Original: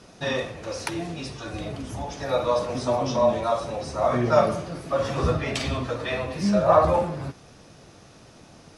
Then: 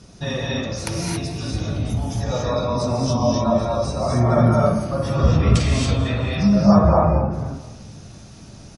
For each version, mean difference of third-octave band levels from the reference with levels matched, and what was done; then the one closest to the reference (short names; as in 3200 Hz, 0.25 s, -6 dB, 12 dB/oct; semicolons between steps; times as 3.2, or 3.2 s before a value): 5.5 dB: spectral gate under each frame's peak -30 dB strong; tone controls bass +13 dB, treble +9 dB; feedback echo 0.22 s, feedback 42%, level -17.5 dB; non-linear reverb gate 0.3 s rising, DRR -3 dB; gain -3.5 dB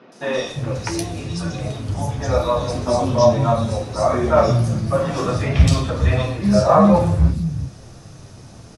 4.0 dB: tone controls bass +10 dB, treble +4 dB; flange 0.64 Hz, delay 7.6 ms, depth 4.5 ms, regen -43%; doubler 30 ms -12.5 dB; three bands offset in time mids, highs, lows 0.12/0.35 s, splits 220/3000 Hz; gain +7.5 dB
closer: second